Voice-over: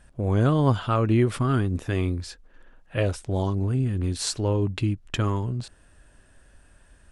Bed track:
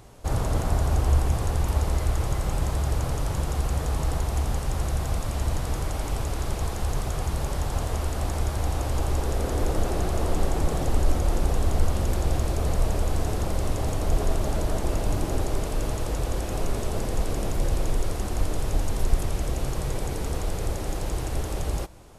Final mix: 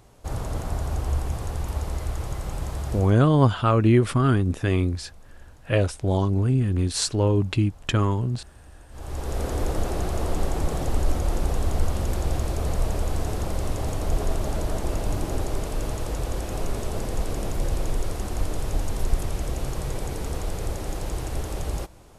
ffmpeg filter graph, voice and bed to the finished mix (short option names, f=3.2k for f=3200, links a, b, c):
-filter_complex "[0:a]adelay=2750,volume=3dB[a];[1:a]volume=18dB,afade=t=out:st=2.92:d=0.26:silence=0.112202,afade=t=in:st=8.9:d=0.51:silence=0.0749894[b];[a][b]amix=inputs=2:normalize=0"